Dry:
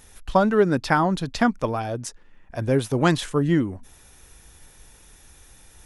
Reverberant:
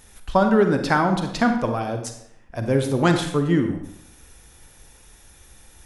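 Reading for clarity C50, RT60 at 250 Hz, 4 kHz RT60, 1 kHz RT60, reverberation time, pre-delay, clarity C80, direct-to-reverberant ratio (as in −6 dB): 6.5 dB, 0.75 s, 0.60 s, 0.80 s, 0.75 s, 35 ms, 9.5 dB, 5.5 dB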